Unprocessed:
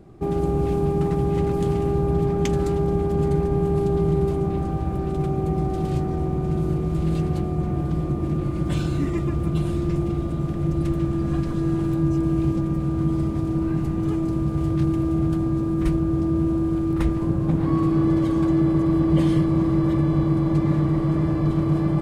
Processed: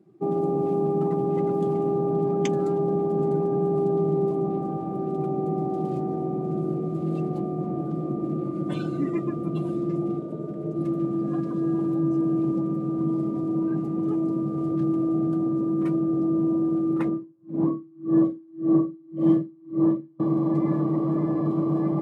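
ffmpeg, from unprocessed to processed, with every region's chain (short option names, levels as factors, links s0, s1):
-filter_complex "[0:a]asettb=1/sr,asplit=3[s0][s1][s2];[s0]atrim=end=10.194[s3];[s1]atrim=start=10.19:end=10.76,asetpts=PTS-STARTPTS,afade=t=in:d=0.004:c=qsin,afade=t=out:st=0.566:d=0.004:c=qsin,highpass=51,tremolo=f=280:d=0.75[s4];[s2]atrim=start=10.756[s5];[s3][s4]acrossfade=d=0.004:c1=hsin:c2=qsin[s6];[s6][s5]acrossfade=d=0.004:c1=qsin:c2=hsin,asettb=1/sr,asplit=3[s7][s8][s9];[s7]atrim=end=17.084[s10];[s8]atrim=start=17.08:end=20.2,asetpts=PTS-STARTPTS,afade=t=in:d=0.004:c=qsin,afade=t=out:st=3.116:d=0.004:c=qsin,highshelf=f=2400:g=-7.5,asplit=2[s11][s12];[s12]adelay=46,volume=0.668[s13];[s11][s13]amix=inputs=2:normalize=0,atrim=end_sample=137592,aeval=exprs='val(0)*pow(10,-33*(0.5-0.5*cos(2*PI*1.8*n/s))/20)':c=same[s14];[s9]atrim=start=20.196[s15];[s10][s14]acrossfade=d=0.004:c1=hsin:c2=qsin[s16];[s16][s15]acrossfade=d=0.004:c1=qsin:c2=hsin,afftdn=nr=15:nf=-35,highpass=f=180:w=0.5412,highpass=f=180:w=1.3066"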